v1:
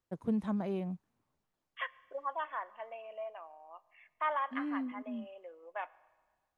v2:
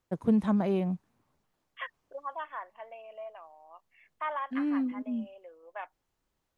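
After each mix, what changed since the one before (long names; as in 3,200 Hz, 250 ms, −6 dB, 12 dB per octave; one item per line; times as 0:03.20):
first voice +7.5 dB
reverb: off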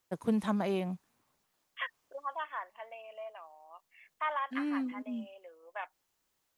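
master: add spectral tilt +2.5 dB per octave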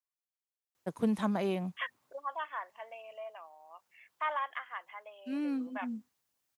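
first voice: entry +0.75 s
master: add high-pass filter 61 Hz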